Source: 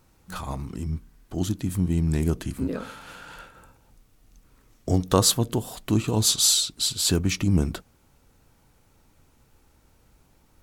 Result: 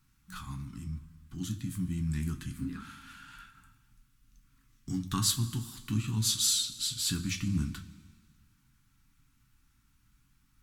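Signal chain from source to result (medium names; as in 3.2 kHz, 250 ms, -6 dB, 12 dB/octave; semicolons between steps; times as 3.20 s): Chebyshev band-stop 230–1300 Hz, order 2; two-slope reverb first 0.21 s, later 1.8 s, from -18 dB, DRR 4.5 dB; trim -8 dB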